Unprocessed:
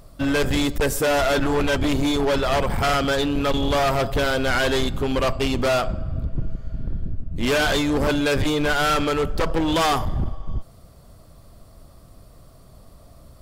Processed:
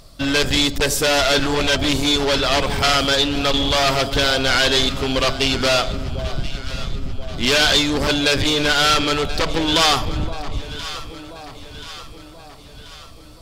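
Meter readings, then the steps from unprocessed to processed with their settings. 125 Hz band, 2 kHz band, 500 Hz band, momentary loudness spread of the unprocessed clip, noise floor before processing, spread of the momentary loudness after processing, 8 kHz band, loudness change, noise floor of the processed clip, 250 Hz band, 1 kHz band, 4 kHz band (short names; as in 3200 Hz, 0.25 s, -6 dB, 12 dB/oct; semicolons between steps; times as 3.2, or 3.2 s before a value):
+0.5 dB, +5.0 dB, +1.0 dB, 11 LU, -48 dBFS, 16 LU, +8.0 dB, +4.5 dB, -41 dBFS, +0.5 dB, +2.0 dB, +11.0 dB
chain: bell 4400 Hz +12.5 dB 1.9 oct; on a send: echo with dull and thin repeats by turns 0.516 s, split 930 Hz, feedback 72%, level -11.5 dB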